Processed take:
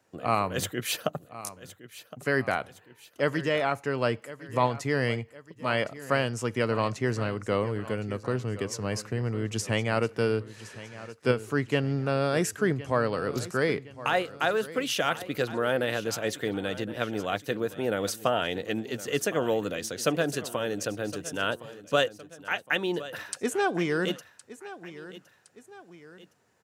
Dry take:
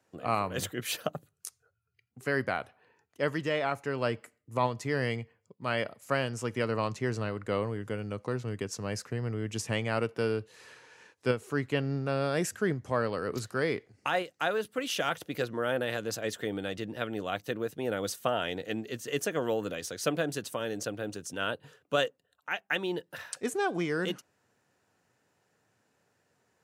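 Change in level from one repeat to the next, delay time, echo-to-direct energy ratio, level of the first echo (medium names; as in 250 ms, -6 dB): -6.5 dB, 1064 ms, -15.0 dB, -16.0 dB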